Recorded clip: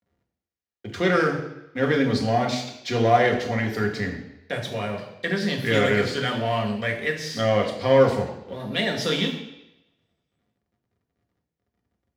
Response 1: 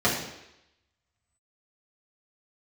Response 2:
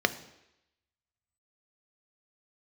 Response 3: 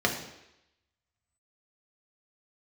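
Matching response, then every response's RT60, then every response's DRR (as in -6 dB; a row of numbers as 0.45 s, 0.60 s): 3; 0.85 s, 0.85 s, 0.85 s; -8.0 dB, 10.0 dB, 0.5 dB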